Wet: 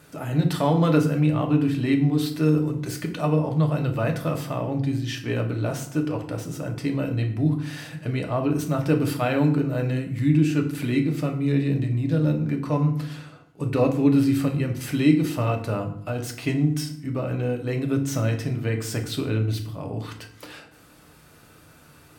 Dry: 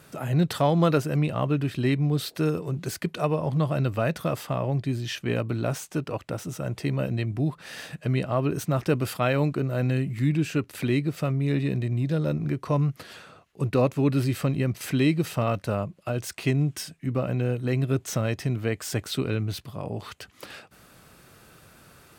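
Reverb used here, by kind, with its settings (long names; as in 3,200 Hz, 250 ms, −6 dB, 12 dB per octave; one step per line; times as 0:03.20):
feedback delay network reverb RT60 0.64 s, low-frequency decay 1.55×, high-frequency decay 0.7×, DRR 2.5 dB
level −1.5 dB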